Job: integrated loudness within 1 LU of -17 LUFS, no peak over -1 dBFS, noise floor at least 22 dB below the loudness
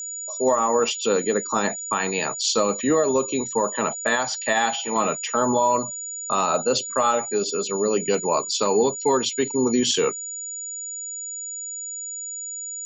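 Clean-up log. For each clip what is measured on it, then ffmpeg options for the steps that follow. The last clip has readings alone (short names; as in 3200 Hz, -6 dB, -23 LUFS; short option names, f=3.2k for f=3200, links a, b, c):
steady tone 6900 Hz; tone level -30 dBFS; loudness -23.0 LUFS; peak -8.0 dBFS; loudness target -17.0 LUFS
-> -af "bandreject=f=6.9k:w=30"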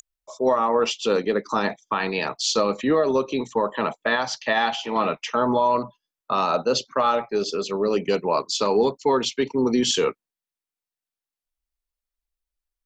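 steady tone none; loudness -23.0 LUFS; peak -8.5 dBFS; loudness target -17.0 LUFS
-> -af "volume=6dB"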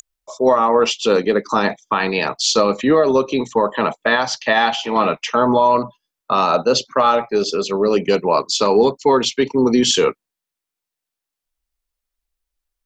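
loudness -17.0 LUFS; peak -2.5 dBFS; noise floor -85 dBFS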